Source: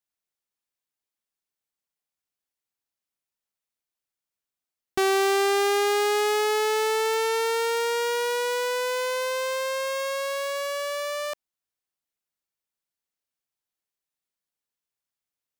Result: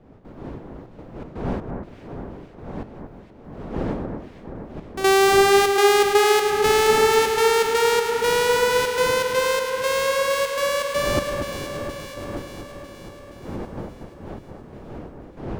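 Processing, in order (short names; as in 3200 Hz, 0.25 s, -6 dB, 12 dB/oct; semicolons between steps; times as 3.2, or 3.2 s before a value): wind noise 410 Hz -41 dBFS; step gate "..xxxxx.xx.xx" 122 bpm -12 dB; echo with dull and thin repeats by turns 0.237 s, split 1900 Hz, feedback 78%, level -5.5 dB; gain +6 dB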